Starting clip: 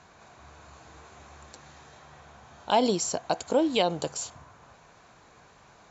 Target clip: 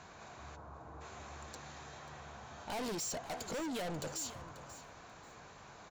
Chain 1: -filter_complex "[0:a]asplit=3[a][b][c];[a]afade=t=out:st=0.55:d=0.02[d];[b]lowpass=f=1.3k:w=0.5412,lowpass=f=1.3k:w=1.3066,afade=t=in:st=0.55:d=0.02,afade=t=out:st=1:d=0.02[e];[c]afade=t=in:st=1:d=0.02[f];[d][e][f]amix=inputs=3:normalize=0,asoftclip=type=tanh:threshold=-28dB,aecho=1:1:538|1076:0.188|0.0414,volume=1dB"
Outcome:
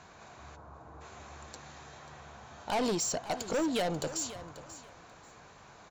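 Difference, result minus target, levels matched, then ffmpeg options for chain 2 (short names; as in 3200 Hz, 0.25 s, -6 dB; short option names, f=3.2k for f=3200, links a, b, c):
soft clip: distortion -5 dB
-filter_complex "[0:a]asplit=3[a][b][c];[a]afade=t=out:st=0.55:d=0.02[d];[b]lowpass=f=1.3k:w=0.5412,lowpass=f=1.3k:w=1.3066,afade=t=in:st=0.55:d=0.02,afade=t=out:st=1:d=0.02[e];[c]afade=t=in:st=1:d=0.02[f];[d][e][f]amix=inputs=3:normalize=0,asoftclip=type=tanh:threshold=-38.5dB,aecho=1:1:538|1076:0.188|0.0414,volume=1dB"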